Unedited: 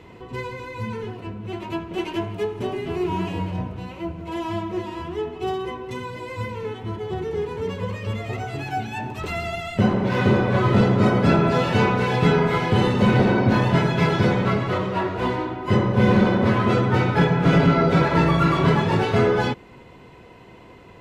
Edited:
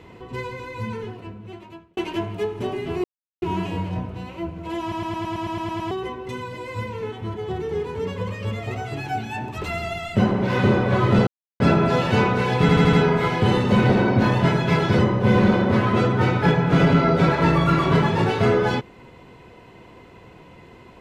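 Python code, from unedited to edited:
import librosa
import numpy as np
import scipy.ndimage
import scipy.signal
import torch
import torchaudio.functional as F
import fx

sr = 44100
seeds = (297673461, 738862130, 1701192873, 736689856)

y = fx.edit(x, sr, fx.fade_out_span(start_s=0.92, length_s=1.05),
    fx.insert_silence(at_s=3.04, length_s=0.38),
    fx.stutter_over(start_s=4.43, slice_s=0.11, count=10),
    fx.silence(start_s=10.89, length_s=0.33),
    fx.stutter(start_s=12.23, slice_s=0.08, count=5),
    fx.cut(start_s=14.29, length_s=1.43), tone=tone)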